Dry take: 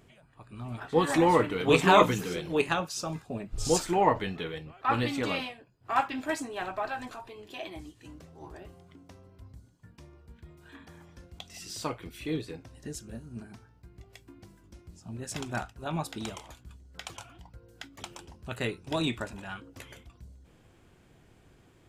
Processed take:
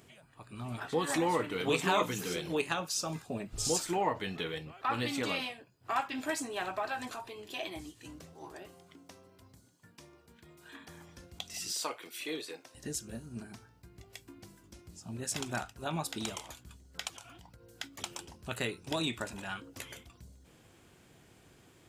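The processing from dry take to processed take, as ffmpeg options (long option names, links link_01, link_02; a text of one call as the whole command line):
ffmpeg -i in.wav -filter_complex "[0:a]asettb=1/sr,asplit=3[link_01][link_02][link_03];[link_01]atrim=end=8.334[link_04];[link_02]atrim=start=8.33:end=10.88,asetpts=PTS-STARTPTS,afade=type=in:duration=0.004:curve=qsin,afade=type=out:start_time=2.546:duration=0.004:curve=qsin,highpass=frequency=220:poles=1[link_05];[link_03]atrim=start=10.876[link_06];[link_04][link_05]acrossfade=duration=0.004:curve1=hsin:curve2=qsin[link_07];[link_07][link_06]acrossfade=duration=0.004:curve1=qsin:curve2=hsin,asettb=1/sr,asplit=3[link_08][link_09][link_10];[link_08]atrim=end=11.724[link_11];[link_09]atrim=start=11.72:end=12.75,asetpts=PTS-STARTPTS,afade=type=in:duration=0.004:curve=qsin,afade=type=out:start_time=1.026:duration=0.004:curve=qsin,highpass=440[link_12];[link_10]atrim=start=12.746[link_13];[link_11][link_12]acrossfade=duration=0.004:curve1=hsin:curve2=qsin[link_14];[link_14][link_13]acrossfade=duration=0.004:curve1=qsin:curve2=hsin,asplit=3[link_15][link_16][link_17];[link_15]afade=type=out:start_time=17.08:duration=0.02[link_18];[link_16]acompressor=threshold=-47dB:ratio=12:attack=3.2:release=140:knee=1:detection=peak,afade=type=in:start_time=17.08:duration=0.02,afade=type=out:start_time=17.68:duration=0.02[link_19];[link_17]afade=type=in:start_time=17.68:duration=0.02[link_20];[link_18][link_19][link_20]amix=inputs=3:normalize=0,highpass=frequency=100:poles=1,highshelf=frequency=3400:gain=7.5,acompressor=threshold=-33dB:ratio=2" out.wav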